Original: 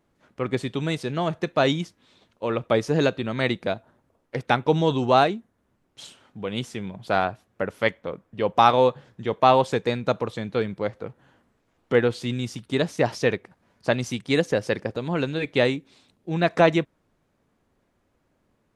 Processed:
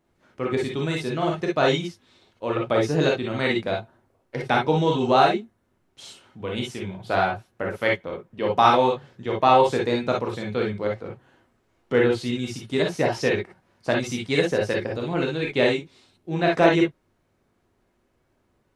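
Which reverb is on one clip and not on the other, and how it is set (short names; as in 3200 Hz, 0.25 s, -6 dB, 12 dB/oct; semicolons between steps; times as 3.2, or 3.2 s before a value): non-linear reverb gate 80 ms rising, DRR -1.5 dB; gain -2.5 dB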